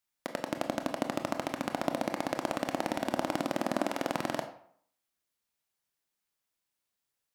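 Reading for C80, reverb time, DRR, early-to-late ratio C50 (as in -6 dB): 12.5 dB, 0.65 s, 6.0 dB, 10.0 dB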